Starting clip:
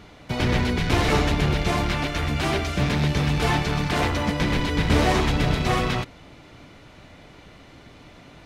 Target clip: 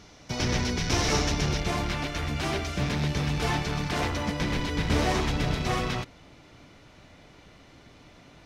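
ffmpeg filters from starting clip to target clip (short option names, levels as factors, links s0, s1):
-af "asetnsamples=n=441:p=0,asendcmd='1.6 equalizer g 4.5',equalizer=f=5700:t=o:w=0.56:g=15,volume=0.531"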